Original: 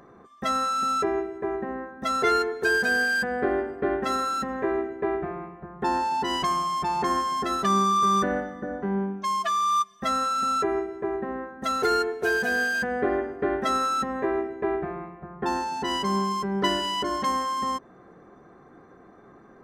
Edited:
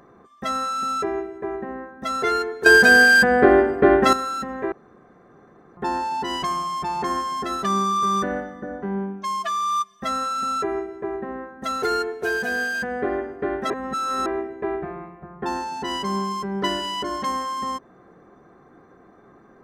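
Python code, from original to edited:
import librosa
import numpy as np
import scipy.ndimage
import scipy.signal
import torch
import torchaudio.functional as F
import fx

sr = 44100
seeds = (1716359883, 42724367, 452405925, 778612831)

y = fx.edit(x, sr, fx.clip_gain(start_s=2.66, length_s=1.47, db=11.0),
    fx.room_tone_fill(start_s=4.72, length_s=1.05),
    fx.reverse_span(start_s=13.7, length_s=0.56), tone=tone)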